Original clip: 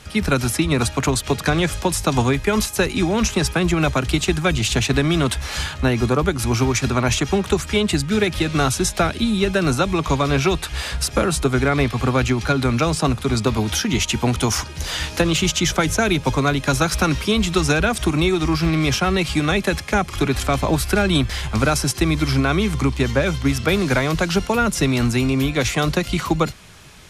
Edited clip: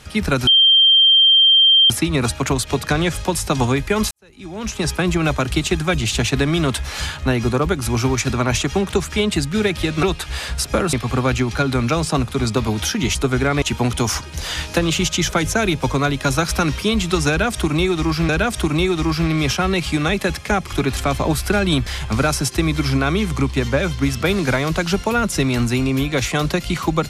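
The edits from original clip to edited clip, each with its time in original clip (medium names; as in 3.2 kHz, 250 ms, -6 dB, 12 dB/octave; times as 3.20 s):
0.47 s: add tone 3.16 kHz -8.5 dBFS 1.43 s
2.68–3.49 s: fade in quadratic
8.60–10.46 s: delete
11.36–11.83 s: move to 14.05 s
17.72–18.72 s: loop, 2 plays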